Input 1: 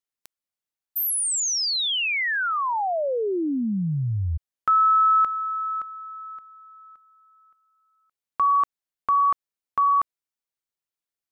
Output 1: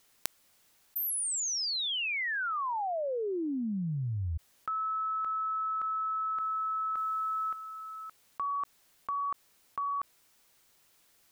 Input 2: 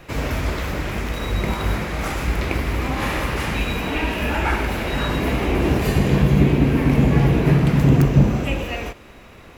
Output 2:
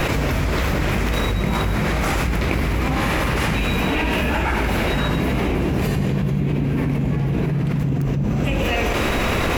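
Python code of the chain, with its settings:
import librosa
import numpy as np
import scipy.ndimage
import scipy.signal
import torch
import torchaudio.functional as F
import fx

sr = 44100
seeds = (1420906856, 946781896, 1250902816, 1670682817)

y = fx.dynamic_eq(x, sr, hz=160.0, q=1.5, threshold_db=-31.0, ratio=6.0, max_db=6)
y = fx.env_flatten(y, sr, amount_pct=100)
y = F.gain(torch.from_numpy(y), -15.0).numpy()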